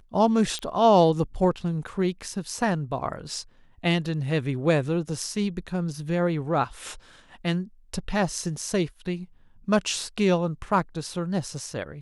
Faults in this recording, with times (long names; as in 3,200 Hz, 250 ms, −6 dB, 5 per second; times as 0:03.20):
0:00.59: click −19 dBFS